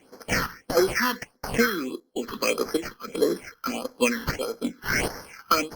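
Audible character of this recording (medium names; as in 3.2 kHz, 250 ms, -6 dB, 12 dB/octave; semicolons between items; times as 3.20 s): aliases and images of a low sample rate 3.7 kHz, jitter 0%; phasing stages 6, 1.6 Hz, lowest notch 590–2700 Hz; chopped level 1.3 Hz, depth 60%, duty 60%; Opus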